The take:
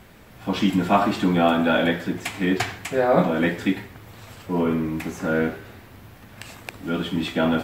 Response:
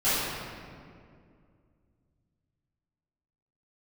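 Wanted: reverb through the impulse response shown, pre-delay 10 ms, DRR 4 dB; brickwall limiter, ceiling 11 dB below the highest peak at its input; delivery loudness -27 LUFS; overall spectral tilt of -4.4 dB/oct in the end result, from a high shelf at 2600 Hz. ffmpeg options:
-filter_complex "[0:a]highshelf=f=2.6k:g=4.5,alimiter=limit=-15dB:level=0:latency=1,asplit=2[a][b];[1:a]atrim=start_sample=2205,adelay=10[c];[b][c]afir=irnorm=-1:irlink=0,volume=-19dB[d];[a][d]amix=inputs=2:normalize=0,volume=-2.5dB"

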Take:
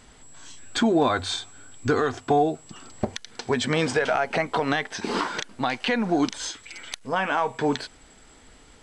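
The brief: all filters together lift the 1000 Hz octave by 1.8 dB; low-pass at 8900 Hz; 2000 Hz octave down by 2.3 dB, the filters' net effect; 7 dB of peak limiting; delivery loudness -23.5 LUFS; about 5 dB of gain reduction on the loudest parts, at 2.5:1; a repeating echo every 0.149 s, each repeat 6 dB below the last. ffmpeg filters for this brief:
-af "lowpass=8.9k,equalizer=f=1k:t=o:g=3.5,equalizer=f=2k:t=o:g=-4.5,acompressor=threshold=-23dB:ratio=2.5,alimiter=limit=-18.5dB:level=0:latency=1,aecho=1:1:149|298|447|596|745|894:0.501|0.251|0.125|0.0626|0.0313|0.0157,volume=5.5dB"

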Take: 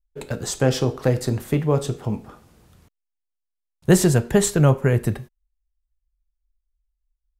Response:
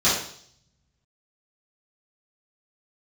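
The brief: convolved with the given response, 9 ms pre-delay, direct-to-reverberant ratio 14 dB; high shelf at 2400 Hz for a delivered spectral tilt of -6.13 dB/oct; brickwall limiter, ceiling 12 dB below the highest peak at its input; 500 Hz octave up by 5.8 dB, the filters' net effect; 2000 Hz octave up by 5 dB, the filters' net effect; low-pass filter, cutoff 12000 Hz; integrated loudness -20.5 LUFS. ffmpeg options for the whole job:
-filter_complex "[0:a]lowpass=12k,equalizer=f=500:t=o:g=7,equalizer=f=2k:t=o:g=9,highshelf=f=2.4k:g=-7,alimiter=limit=-12.5dB:level=0:latency=1,asplit=2[a][b];[1:a]atrim=start_sample=2205,adelay=9[c];[b][c]afir=irnorm=-1:irlink=0,volume=-31.5dB[d];[a][d]amix=inputs=2:normalize=0,volume=4dB"

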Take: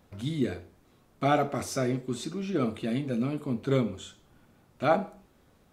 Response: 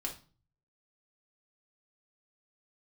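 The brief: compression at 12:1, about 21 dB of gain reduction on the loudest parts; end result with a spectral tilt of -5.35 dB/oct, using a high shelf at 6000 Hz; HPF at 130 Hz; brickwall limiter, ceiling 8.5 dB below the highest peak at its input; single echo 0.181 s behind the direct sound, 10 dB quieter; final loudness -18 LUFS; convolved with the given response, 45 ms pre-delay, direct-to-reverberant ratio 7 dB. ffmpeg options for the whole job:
-filter_complex "[0:a]highpass=130,highshelf=f=6k:g=-6,acompressor=threshold=-40dB:ratio=12,alimiter=level_in=13dB:limit=-24dB:level=0:latency=1,volume=-13dB,aecho=1:1:181:0.316,asplit=2[a][b];[1:a]atrim=start_sample=2205,adelay=45[c];[b][c]afir=irnorm=-1:irlink=0,volume=-7.5dB[d];[a][d]amix=inputs=2:normalize=0,volume=28dB"

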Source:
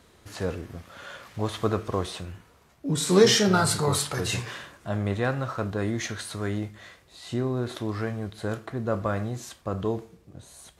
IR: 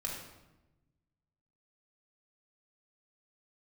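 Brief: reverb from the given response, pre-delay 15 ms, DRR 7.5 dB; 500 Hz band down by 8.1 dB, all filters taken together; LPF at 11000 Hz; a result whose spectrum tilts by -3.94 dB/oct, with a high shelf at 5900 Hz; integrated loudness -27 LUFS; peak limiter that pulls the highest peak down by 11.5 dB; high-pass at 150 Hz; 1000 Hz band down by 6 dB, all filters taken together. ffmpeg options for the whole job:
-filter_complex "[0:a]highpass=150,lowpass=11k,equalizer=f=500:t=o:g=-9,equalizer=f=1k:t=o:g=-6,highshelf=f=5.9k:g=5,alimiter=limit=-20.5dB:level=0:latency=1,asplit=2[a][b];[1:a]atrim=start_sample=2205,adelay=15[c];[b][c]afir=irnorm=-1:irlink=0,volume=-9.5dB[d];[a][d]amix=inputs=2:normalize=0,volume=6dB"

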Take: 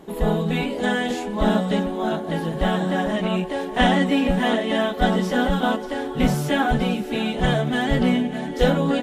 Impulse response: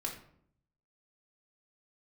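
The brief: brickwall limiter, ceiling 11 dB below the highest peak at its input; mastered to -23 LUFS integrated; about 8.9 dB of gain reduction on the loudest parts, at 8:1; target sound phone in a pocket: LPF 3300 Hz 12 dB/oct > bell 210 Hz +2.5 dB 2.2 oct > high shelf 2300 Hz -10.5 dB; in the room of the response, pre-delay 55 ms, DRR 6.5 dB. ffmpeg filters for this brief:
-filter_complex "[0:a]acompressor=threshold=-22dB:ratio=8,alimiter=limit=-23dB:level=0:latency=1,asplit=2[a][b];[1:a]atrim=start_sample=2205,adelay=55[c];[b][c]afir=irnorm=-1:irlink=0,volume=-7.5dB[d];[a][d]amix=inputs=2:normalize=0,lowpass=3.3k,equalizer=f=210:t=o:w=2.2:g=2.5,highshelf=f=2.3k:g=-10.5,volume=5.5dB"

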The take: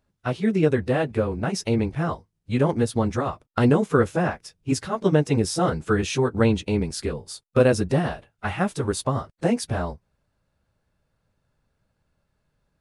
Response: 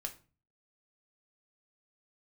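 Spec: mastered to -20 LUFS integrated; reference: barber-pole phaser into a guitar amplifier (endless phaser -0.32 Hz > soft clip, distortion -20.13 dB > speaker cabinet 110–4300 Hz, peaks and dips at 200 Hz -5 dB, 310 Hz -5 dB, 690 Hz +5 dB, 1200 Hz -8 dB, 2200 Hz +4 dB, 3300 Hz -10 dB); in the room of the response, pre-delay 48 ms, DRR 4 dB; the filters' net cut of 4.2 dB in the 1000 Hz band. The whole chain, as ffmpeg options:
-filter_complex "[0:a]equalizer=f=1k:t=o:g=-7.5,asplit=2[a][b];[1:a]atrim=start_sample=2205,adelay=48[c];[b][c]afir=irnorm=-1:irlink=0,volume=-2.5dB[d];[a][d]amix=inputs=2:normalize=0,asplit=2[e][f];[f]afreqshift=-0.32[g];[e][g]amix=inputs=2:normalize=1,asoftclip=threshold=-13.5dB,highpass=110,equalizer=f=200:t=q:w=4:g=-5,equalizer=f=310:t=q:w=4:g=-5,equalizer=f=690:t=q:w=4:g=5,equalizer=f=1.2k:t=q:w=4:g=-8,equalizer=f=2.2k:t=q:w=4:g=4,equalizer=f=3.3k:t=q:w=4:g=-10,lowpass=f=4.3k:w=0.5412,lowpass=f=4.3k:w=1.3066,volume=9dB"

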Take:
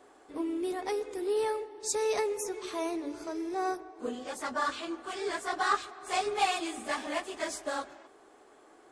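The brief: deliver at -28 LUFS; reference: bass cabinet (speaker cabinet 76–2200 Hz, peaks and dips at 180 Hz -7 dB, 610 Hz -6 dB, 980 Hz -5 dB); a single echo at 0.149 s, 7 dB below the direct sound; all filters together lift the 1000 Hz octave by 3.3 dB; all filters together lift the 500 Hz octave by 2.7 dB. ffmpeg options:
-af "highpass=f=76:w=0.5412,highpass=f=76:w=1.3066,equalizer=f=180:t=q:w=4:g=-7,equalizer=f=610:t=q:w=4:g=-6,equalizer=f=980:t=q:w=4:g=-5,lowpass=f=2.2k:w=0.5412,lowpass=f=2.2k:w=1.3066,equalizer=f=500:t=o:g=4,equalizer=f=1k:t=o:g=6.5,aecho=1:1:149:0.447,volume=2dB"

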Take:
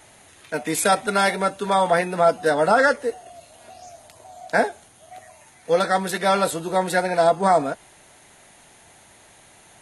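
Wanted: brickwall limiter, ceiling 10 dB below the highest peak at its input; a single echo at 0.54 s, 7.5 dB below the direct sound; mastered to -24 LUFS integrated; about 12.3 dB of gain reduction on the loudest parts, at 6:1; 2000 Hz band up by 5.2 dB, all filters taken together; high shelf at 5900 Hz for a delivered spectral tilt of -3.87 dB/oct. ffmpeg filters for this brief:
-af "equalizer=f=2k:t=o:g=7.5,highshelf=f=5.9k:g=-6,acompressor=threshold=-24dB:ratio=6,alimiter=limit=-20dB:level=0:latency=1,aecho=1:1:540:0.422,volume=7.5dB"

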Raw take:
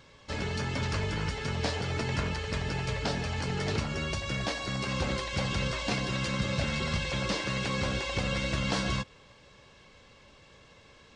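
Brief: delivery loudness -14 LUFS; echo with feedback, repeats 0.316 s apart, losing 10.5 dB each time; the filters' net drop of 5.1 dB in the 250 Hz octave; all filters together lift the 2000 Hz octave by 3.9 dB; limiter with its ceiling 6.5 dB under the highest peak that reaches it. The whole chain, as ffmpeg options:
-af "equalizer=f=250:t=o:g=-8,equalizer=f=2k:t=o:g=5,alimiter=limit=-23.5dB:level=0:latency=1,aecho=1:1:316|632|948:0.299|0.0896|0.0269,volume=18dB"

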